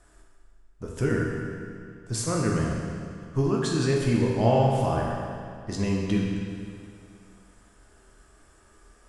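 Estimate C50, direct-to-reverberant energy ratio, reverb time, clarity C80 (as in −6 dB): 0.5 dB, −2.5 dB, 2.3 s, 1.5 dB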